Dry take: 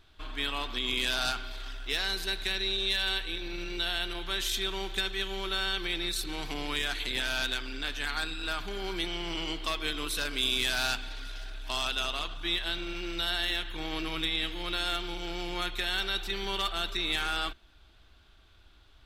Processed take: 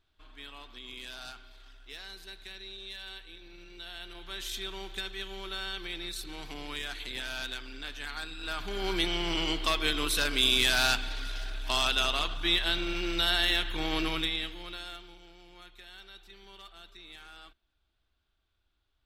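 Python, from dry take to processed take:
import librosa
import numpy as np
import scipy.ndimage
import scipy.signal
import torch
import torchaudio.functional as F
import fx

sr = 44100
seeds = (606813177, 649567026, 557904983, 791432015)

y = fx.gain(x, sr, db=fx.line((3.74, -14.0), (4.52, -6.0), (8.3, -6.0), (8.9, 4.0), (14.06, 4.0), (14.58, -6.5), (15.36, -19.0)))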